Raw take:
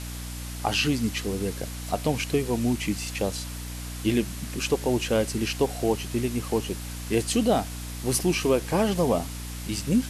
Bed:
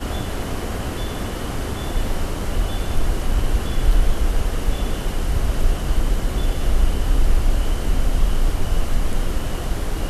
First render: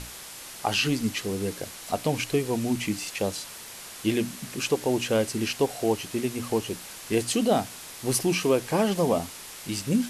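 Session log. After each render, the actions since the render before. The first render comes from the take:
mains-hum notches 60/120/180/240/300 Hz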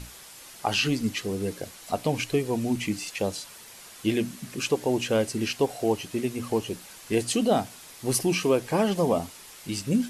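broadband denoise 6 dB, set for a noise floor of −42 dBFS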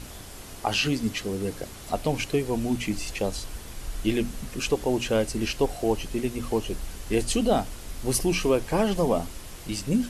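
mix in bed −18.5 dB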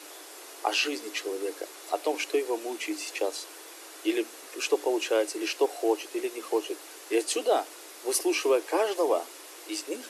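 Chebyshev high-pass filter 310 Hz, order 6
notch filter 3,100 Hz, Q 26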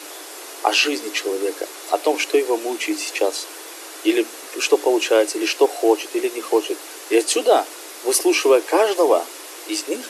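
level +9.5 dB
brickwall limiter −2 dBFS, peak gain reduction 1 dB

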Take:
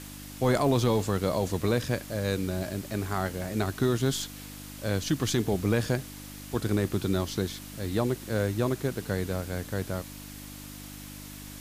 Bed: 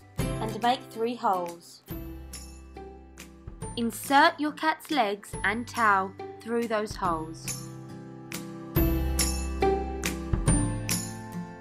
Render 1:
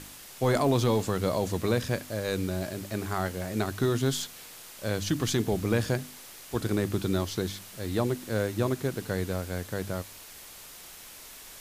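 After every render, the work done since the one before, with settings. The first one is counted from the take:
hum removal 50 Hz, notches 6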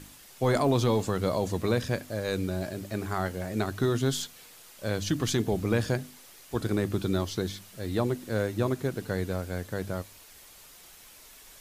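broadband denoise 6 dB, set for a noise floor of −47 dBFS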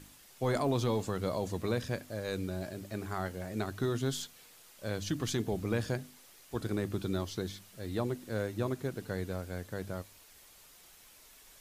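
level −6 dB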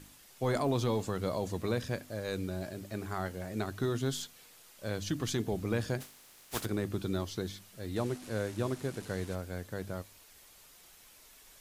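0:06.00–0:06.64: compressing power law on the bin magnitudes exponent 0.39
0:07.96–0:09.35: linear delta modulator 64 kbit/s, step −42 dBFS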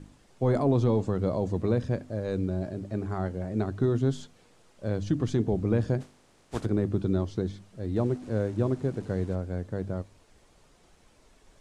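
low-pass filter 9,200 Hz 24 dB per octave
tilt shelving filter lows +8.5 dB, about 1,100 Hz

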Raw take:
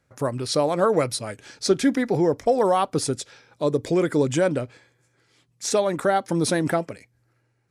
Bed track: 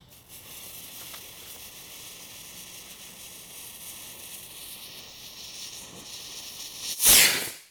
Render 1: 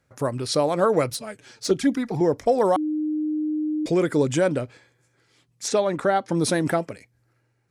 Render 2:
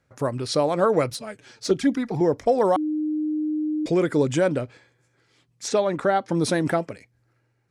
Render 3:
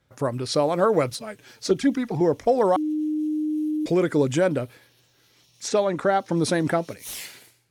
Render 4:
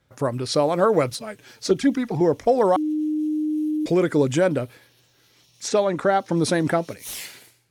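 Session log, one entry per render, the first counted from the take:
0:01.10–0:02.21: flanger swept by the level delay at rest 11 ms, full sweep at −14.5 dBFS; 0:02.76–0:03.86: beep over 306 Hz −22 dBFS; 0:05.68–0:06.37: high-frequency loss of the air 60 metres
high-shelf EQ 10,000 Hz −10 dB
mix in bed track −19.5 dB
level +1.5 dB

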